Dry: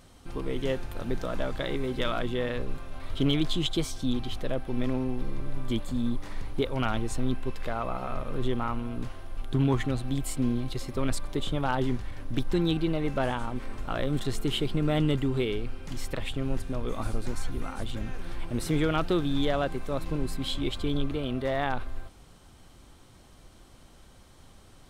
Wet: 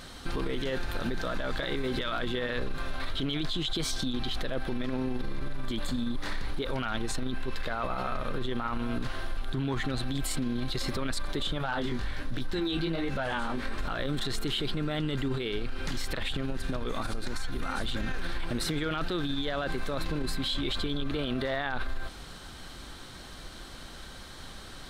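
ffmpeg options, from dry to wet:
ffmpeg -i in.wav -filter_complex "[0:a]asettb=1/sr,asplit=3[link_01][link_02][link_03];[link_01]atrim=end=11.584[link_04];[link_02]atrim=start=11.58:end=13.79,asetpts=PTS-STARTPTS,afade=type=in:duration=0.004:curve=qsin,afade=type=out:start_time=2.206:duration=0.004:curve=qsin,flanger=delay=15.5:depth=5.8:speed=1.3[link_05];[link_03]atrim=start=13.786[link_06];[link_04][link_05]acrossfade=duration=0.004:curve1=hsin:curve2=qsin[link_07];[link_07][link_06]acrossfade=duration=0.004:curve1=qsin:curve2=hsin,asettb=1/sr,asplit=3[link_08][link_09][link_10];[link_08]atrim=end=15.384[link_11];[link_09]atrim=start=15.38:end=17.63,asetpts=PTS-STARTPTS,afade=type=in:duration=0.004:curve=qsin,afade=type=out:start_time=2.246:duration=0.004:curve=qsin,acompressor=threshold=-32dB:ratio=6:attack=3.2:release=140:knee=1:detection=peak[link_12];[link_10]atrim=start=17.626[link_13];[link_11][link_12]acrossfade=duration=0.004:curve1=hsin:curve2=qsin[link_14];[link_14][link_13]acrossfade=duration=0.004:curve1=qsin:curve2=hsin,equalizer=frequency=100:width_type=o:width=0.67:gain=-5,equalizer=frequency=1600:width_type=o:width=0.67:gain=8,equalizer=frequency=4000:width_type=o:width=0.67:gain=9,alimiter=level_in=4dB:limit=-24dB:level=0:latency=1:release=44,volume=-4dB,acompressor=threshold=-34dB:ratio=6,volume=8dB" out.wav

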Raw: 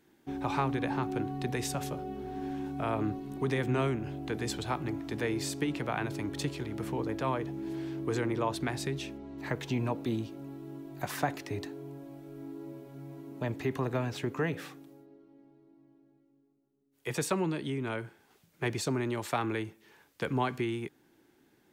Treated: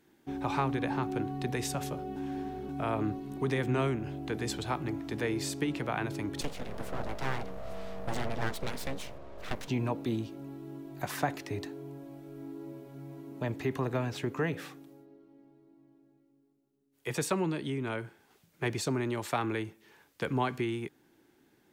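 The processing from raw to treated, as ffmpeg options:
ffmpeg -i in.wav -filter_complex "[0:a]asettb=1/sr,asplit=3[link_01][link_02][link_03];[link_01]atrim=end=6.414[link_04];[link_02]atrim=start=6.41:end=9.68,asetpts=PTS-STARTPTS,afade=type=in:duration=0.004:curve=qsin,afade=type=out:start_time=3.266:duration=0.004:curve=qsin,aeval=exprs='abs(val(0))':channel_layout=same[link_05];[link_03]atrim=start=9.676[link_06];[link_04][link_05]acrossfade=duration=0.004:curve1=hsin:curve2=qsin[link_07];[link_07][link_06]acrossfade=duration=0.004:curve1=qsin:curve2=hsin,asplit=3[link_08][link_09][link_10];[link_08]atrim=end=2.162[link_11];[link_09]atrim=start=2.158:end=2.692,asetpts=PTS-STARTPTS,areverse[link_12];[link_10]atrim=start=2.688[link_13];[link_11][link_12]acrossfade=duration=0.004:curve1=hsin:curve2=hsin[link_14];[link_14][link_13]acrossfade=duration=0.004:curve1=hsin:curve2=hsin" out.wav

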